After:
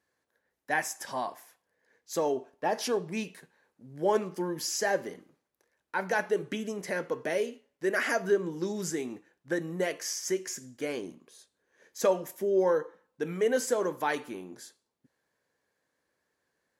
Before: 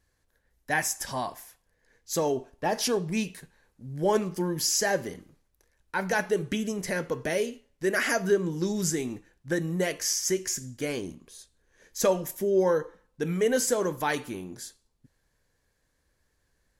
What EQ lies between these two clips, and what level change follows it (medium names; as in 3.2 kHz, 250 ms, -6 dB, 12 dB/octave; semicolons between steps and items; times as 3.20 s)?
Bessel high-pass 310 Hz, order 2; treble shelf 2.9 kHz -8.5 dB; 0.0 dB